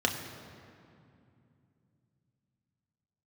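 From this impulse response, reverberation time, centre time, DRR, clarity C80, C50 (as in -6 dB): 2.6 s, 45 ms, 1.5 dB, 7.5 dB, 6.5 dB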